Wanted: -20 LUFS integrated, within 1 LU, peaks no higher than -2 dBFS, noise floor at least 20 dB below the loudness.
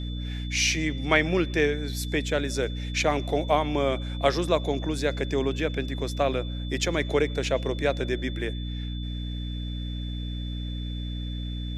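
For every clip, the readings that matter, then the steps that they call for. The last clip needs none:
hum 60 Hz; harmonics up to 300 Hz; hum level -29 dBFS; steady tone 3500 Hz; tone level -42 dBFS; loudness -27.5 LUFS; peak -5.0 dBFS; loudness target -20.0 LUFS
-> de-hum 60 Hz, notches 5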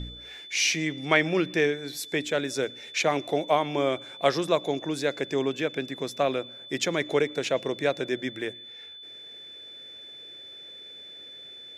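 hum none; steady tone 3500 Hz; tone level -42 dBFS
-> notch 3500 Hz, Q 30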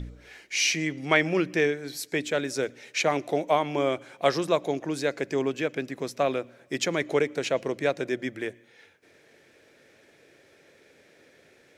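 steady tone none; loudness -27.5 LUFS; peak -5.5 dBFS; loudness target -20.0 LUFS
-> gain +7.5 dB; limiter -2 dBFS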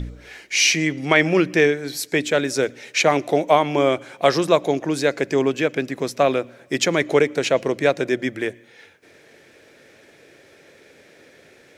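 loudness -20.0 LUFS; peak -2.0 dBFS; noise floor -51 dBFS

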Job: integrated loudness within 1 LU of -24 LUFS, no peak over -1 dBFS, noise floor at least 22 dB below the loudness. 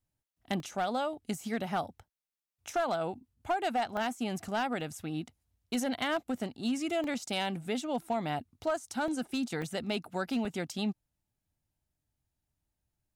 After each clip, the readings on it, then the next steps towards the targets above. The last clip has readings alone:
clipped 0.4%; flat tops at -24.0 dBFS; dropouts 7; longest dropout 1.7 ms; loudness -34.0 LUFS; peak -24.0 dBFS; loudness target -24.0 LUFS
-> clip repair -24 dBFS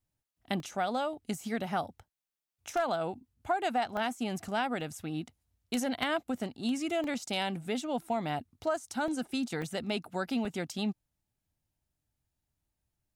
clipped 0.0%; dropouts 7; longest dropout 1.7 ms
-> interpolate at 0.6/3.97/4.81/7.04/9.08/9.62/10.45, 1.7 ms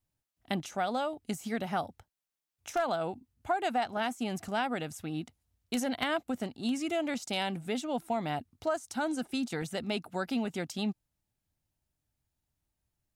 dropouts 0; loudness -34.0 LUFS; peak -15.0 dBFS; loudness target -24.0 LUFS
-> gain +10 dB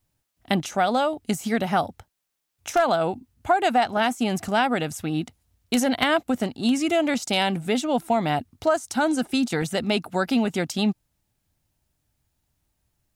loudness -24.0 LUFS; peak -5.0 dBFS; noise floor -76 dBFS

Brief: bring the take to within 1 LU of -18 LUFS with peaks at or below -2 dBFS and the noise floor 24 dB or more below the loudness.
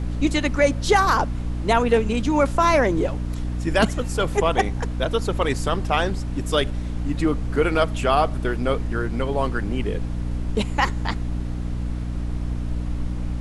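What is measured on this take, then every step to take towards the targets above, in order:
hum 60 Hz; harmonics up to 300 Hz; hum level -25 dBFS; noise floor -28 dBFS; noise floor target -47 dBFS; loudness -23.0 LUFS; peak -5.0 dBFS; loudness target -18.0 LUFS
-> de-hum 60 Hz, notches 5; noise print and reduce 19 dB; gain +5 dB; limiter -2 dBFS

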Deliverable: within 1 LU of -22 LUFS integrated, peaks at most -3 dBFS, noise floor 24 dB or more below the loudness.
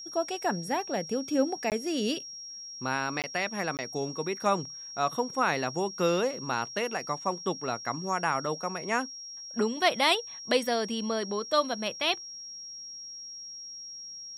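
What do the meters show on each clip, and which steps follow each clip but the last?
dropouts 3; longest dropout 18 ms; steady tone 5600 Hz; tone level -40 dBFS; loudness -30.5 LUFS; peak -9.5 dBFS; loudness target -22.0 LUFS
-> interpolate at 1.7/3.22/3.77, 18 ms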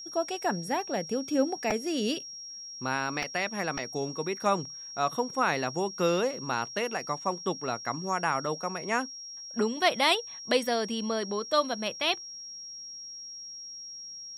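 dropouts 0; steady tone 5600 Hz; tone level -40 dBFS
-> notch 5600 Hz, Q 30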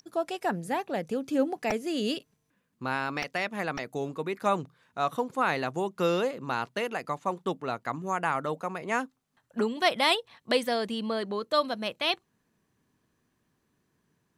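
steady tone none; loudness -30.0 LUFS; peak -9.5 dBFS; loudness target -22.0 LUFS
-> gain +8 dB; limiter -3 dBFS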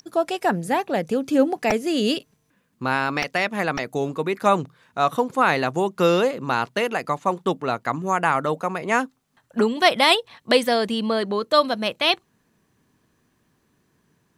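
loudness -22.0 LUFS; peak -3.0 dBFS; noise floor -68 dBFS

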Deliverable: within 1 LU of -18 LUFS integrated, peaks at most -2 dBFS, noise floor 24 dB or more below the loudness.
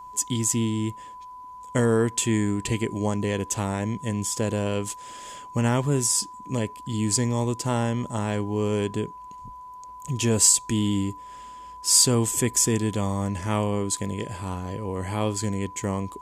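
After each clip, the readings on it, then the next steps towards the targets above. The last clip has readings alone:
steady tone 1000 Hz; tone level -39 dBFS; loudness -24.5 LUFS; peak -6.5 dBFS; loudness target -18.0 LUFS
-> notch 1000 Hz, Q 30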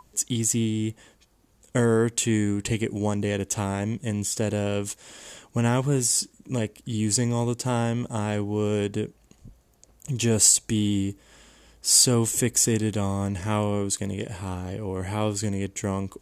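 steady tone none; loudness -24.5 LUFS; peak -6.5 dBFS; loudness target -18.0 LUFS
-> gain +6.5 dB; limiter -2 dBFS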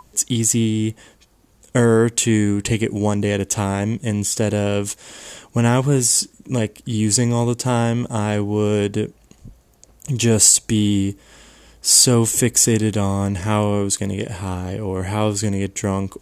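loudness -18.5 LUFS; peak -2.0 dBFS; noise floor -54 dBFS

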